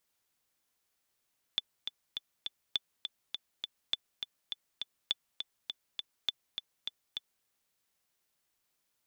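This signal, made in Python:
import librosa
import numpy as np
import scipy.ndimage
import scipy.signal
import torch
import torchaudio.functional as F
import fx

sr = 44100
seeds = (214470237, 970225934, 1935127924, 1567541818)

y = fx.click_track(sr, bpm=204, beats=4, bars=5, hz=3490.0, accent_db=7.0, level_db=-16.0)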